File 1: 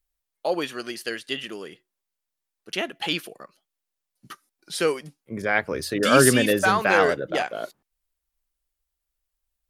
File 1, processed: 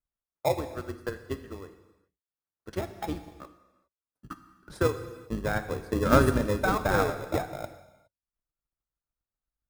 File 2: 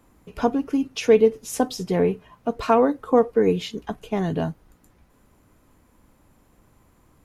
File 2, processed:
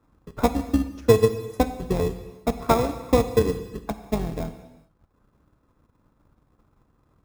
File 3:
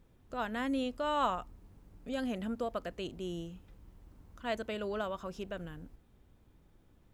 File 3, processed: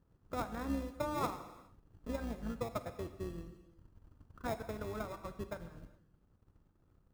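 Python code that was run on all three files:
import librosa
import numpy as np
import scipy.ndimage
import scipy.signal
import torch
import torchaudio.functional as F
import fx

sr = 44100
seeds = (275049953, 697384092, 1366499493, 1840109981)

p1 = fx.octave_divider(x, sr, octaves=2, level_db=1.0)
p2 = fx.highpass(p1, sr, hz=41.0, slope=6)
p3 = fx.transient(p2, sr, attack_db=9, sustain_db=-10)
p4 = fx.high_shelf_res(p3, sr, hz=1900.0, db=-12.5, q=3.0)
p5 = fx.sample_hold(p4, sr, seeds[0], rate_hz=1500.0, jitter_pct=0)
p6 = p4 + (p5 * librosa.db_to_amplitude(-5.0))
p7 = fx.dynamic_eq(p6, sr, hz=1500.0, q=1.1, threshold_db=-33.0, ratio=4.0, max_db=-4)
p8 = fx.rev_gated(p7, sr, seeds[1], gate_ms=440, shape='falling', drr_db=9.0)
y = p8 * librosa.db_to_amplitude(-11.0)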